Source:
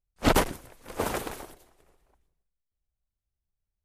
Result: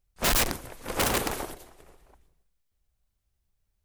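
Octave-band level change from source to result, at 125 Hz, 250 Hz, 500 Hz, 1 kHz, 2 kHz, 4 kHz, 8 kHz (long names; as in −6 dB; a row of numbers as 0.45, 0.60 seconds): −2.0, −4.0, −2.5, −1.0, +2.5, +5.5, +7.5 decibels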